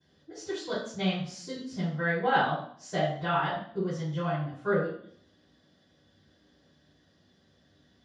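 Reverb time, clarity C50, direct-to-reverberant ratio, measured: 0.60 s, 2.0 dB, -23.5 dB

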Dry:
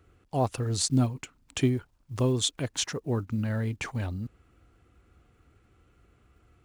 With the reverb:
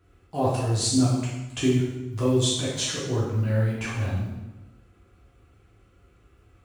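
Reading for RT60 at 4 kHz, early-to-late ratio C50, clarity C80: 0.90 s, 0.5 dB, 4.0 dB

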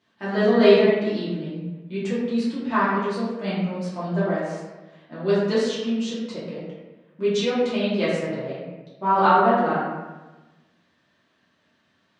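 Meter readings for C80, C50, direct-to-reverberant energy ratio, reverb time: 2.0 dB, -0.5 dB, -11.0 dB, 1.2 s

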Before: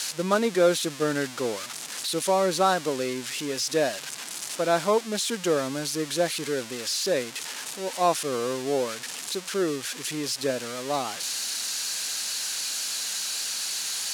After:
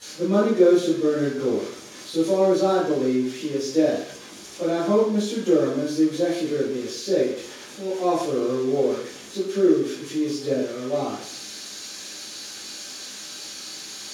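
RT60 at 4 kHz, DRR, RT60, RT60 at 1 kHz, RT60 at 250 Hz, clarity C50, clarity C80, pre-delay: 0.65 s, -14.0 dB, 0.55 s, 0.55 s, 0.65 s, 2.0 dB, 5.5 dB, 10 ms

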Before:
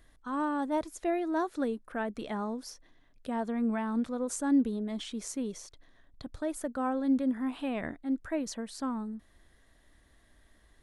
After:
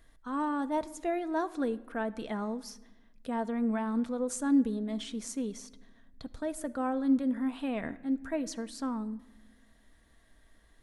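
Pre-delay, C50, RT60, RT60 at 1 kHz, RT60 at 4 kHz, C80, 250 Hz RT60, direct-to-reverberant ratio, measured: 4 ms, 18.5 dB, 1.1 s, 1.0 s, 0.70 s, 20.5 dB, 1.9 s, 10.0 dB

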